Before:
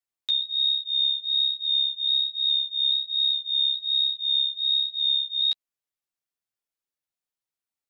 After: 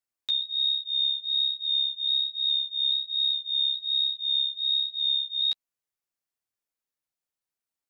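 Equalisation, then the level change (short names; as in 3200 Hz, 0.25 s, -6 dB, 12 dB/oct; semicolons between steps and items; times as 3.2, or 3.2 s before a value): bell 3400 Hz -2.5 dB; 0.0 dB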